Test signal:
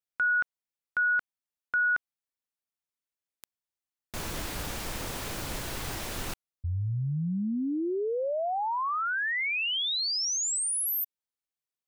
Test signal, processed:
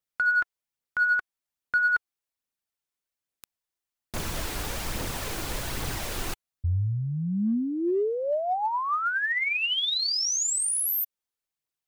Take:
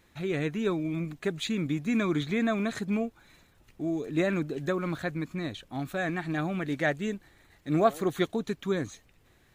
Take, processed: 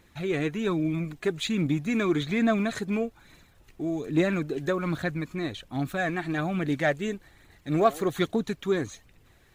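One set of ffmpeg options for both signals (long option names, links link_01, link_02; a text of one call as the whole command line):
ffmpeg -i in.wav -filter_complex "[0:a]aphaser=in_gain=1:out_gain=1:delay=3:decay=0.32:speed=1.2:type=triangular,asplit=2[link_01][link_02];[link_02]asoftclip=type=hard:threshold=-24dB,volume=-10.5dB[link_03];[link_01][link_03]amix=inputs=2:normalize=0" out.wav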